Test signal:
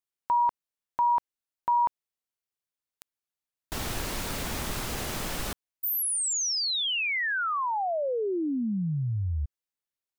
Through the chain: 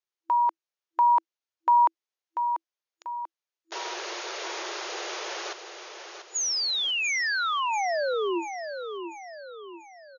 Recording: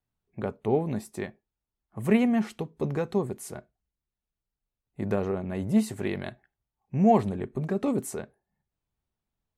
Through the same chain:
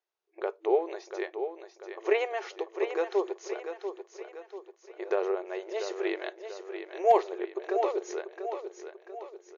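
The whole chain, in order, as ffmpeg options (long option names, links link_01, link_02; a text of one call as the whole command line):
ffmpeg -i in.wav -af "aecho=1:1:690|1380|2070|2760|3450:0.376|0.169|0.0761|0.0342|0.0154,afftfilt=real='re*between(b*sr/4096,330,6900)':imag='im*between(b*sr/4096,330,6900)':win_size=4096:overlap=0.75,asoftclip=type=hard:threshold=-12.5dB,volume=1dB" out.wav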